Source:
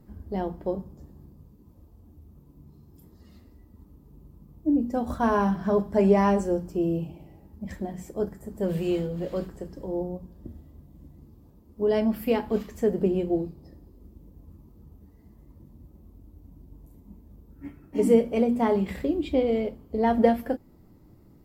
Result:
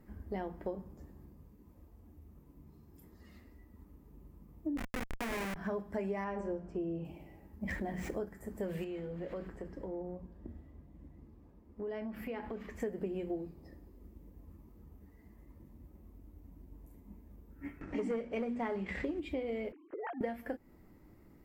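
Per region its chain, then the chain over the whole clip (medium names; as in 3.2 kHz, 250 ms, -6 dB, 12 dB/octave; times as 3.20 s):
4.77–5.56 s: Savitzky-Golay filter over 65 samples + Schmitt trigger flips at -24.5 dBFS
6.24–7.05 s: low-pass 6.7 kHz + treble shelf 2.8 kHz -10 dB + de-hum 99.36 Hz, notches 30
7.63–8.24 s: median filter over 5 samples + level flattener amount 50%
8.84–12.80 s: low-pass 2.6 kHz 6 dB/octave + compression 5:1, threshold -33 dBFS
17.81–19.20 s: low-pass 6.8 kHz 24 dB/octave + upward compressor, threshold -32 dBFS + waveshaping leveller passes 1
19.72–20.21 s: formants replaced by sine waves + compression 10:1, threshold -35 dBFS
whole clip: ten-band graphic EQ 125 Hz -6 dB, 2 kHz +9 dB, 4 kHz -4 dB; compression 6:1, threshold -31 dBFS; trim -3.5 dB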